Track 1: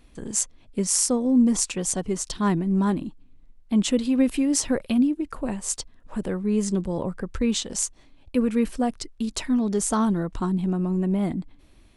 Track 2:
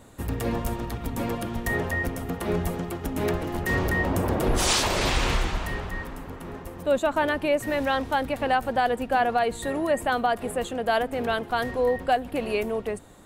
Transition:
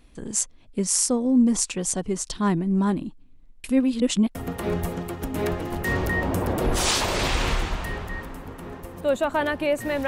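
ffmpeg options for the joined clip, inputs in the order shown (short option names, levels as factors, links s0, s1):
-filter_complex "[0:a]apad=whole_dur=10.07,atrim=end=10.07,asplit=2[s0][s1];[s0]atrim=end=3.642[s2];[s1]atrim=start=3.638:end=4.352,asetpts=PTS-STARTPTS,areverse[s3];[1:a]atrim=start=2.168:end=7.89[s4];[s2][s3]acrossfade=d=0.004:c1=hsin:c2=hsin[s5];[s5][s4]acrossfade=d=0.004:c1=hsin:c2=hsin"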